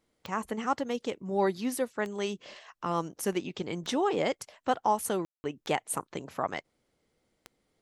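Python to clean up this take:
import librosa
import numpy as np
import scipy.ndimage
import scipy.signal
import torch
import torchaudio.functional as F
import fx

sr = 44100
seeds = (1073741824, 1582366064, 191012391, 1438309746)

y = fx.fix_declick_ar(x, sr, threshold=10.0)
y = fx.fix_ambience(y, sr, seeds[0], print_start_s=6.62, print_end_s=7.12, start_s=5.25, end_s=5.44)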